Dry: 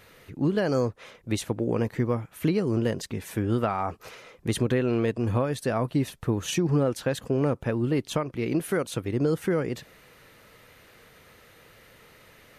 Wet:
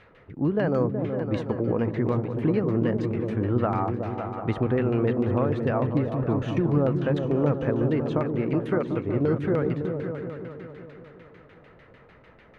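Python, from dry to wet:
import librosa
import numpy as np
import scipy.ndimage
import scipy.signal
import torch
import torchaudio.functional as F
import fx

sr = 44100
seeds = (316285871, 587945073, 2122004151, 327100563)

y = fx.echo_opening(x, sr, ms=186, hz=200, octaves=2, feedback_pct=70, wet_db=-3)
y = fx.filter_lfo_lowpass(y, sr, shape='saw_down', hz=6.7, low_hz=800.0, high_hz=2800.0, q=0.97)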